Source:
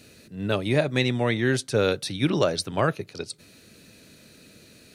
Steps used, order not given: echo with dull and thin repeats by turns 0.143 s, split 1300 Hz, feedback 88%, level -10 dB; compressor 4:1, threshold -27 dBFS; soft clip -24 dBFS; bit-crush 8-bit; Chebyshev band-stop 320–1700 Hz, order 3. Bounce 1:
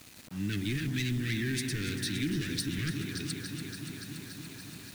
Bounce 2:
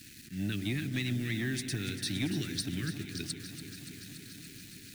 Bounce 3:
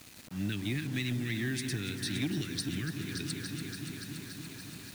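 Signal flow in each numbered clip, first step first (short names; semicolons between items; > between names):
echo with dull and thin repeats by turns > soft clip > Chebyshev band-stop > compressor > bit-crush; compressor > bit-crush > Chebyshev band-stop > soft clip > echo with dull and thin repeats by turns; echo with dull and thin repeats by turns > compressor > Chebyshev band-stop > soft clip > bit-crush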